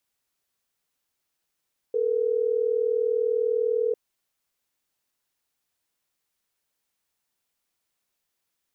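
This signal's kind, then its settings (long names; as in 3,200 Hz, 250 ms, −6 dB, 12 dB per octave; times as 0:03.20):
call progress tone ringback tone, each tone −24 dBFS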